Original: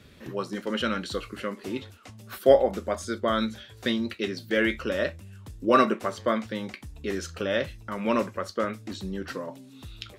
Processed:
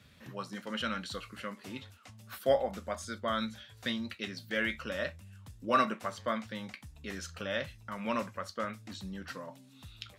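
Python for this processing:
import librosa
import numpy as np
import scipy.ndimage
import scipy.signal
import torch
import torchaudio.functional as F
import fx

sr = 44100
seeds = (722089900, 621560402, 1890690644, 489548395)

y = scipy.signal.sosfilt(scipy.signal.butter(2, 67.0, 'highpass', fs=sr, output='sos'), x)
y = fx.peak_eq(y, sr, hz=370.0, db=-12.0, octaves=0.85)
y = F.gain(torch.from_numpy(y), -5.0).numpy()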